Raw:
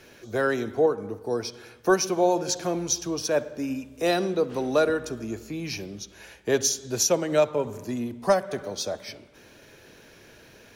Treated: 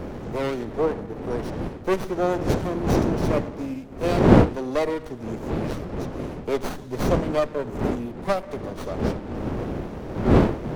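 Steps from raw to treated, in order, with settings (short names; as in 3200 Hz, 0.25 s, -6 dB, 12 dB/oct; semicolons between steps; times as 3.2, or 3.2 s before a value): wind noise 420 Hz -24 dBFS; running maximum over 17 samples; gain -1 dB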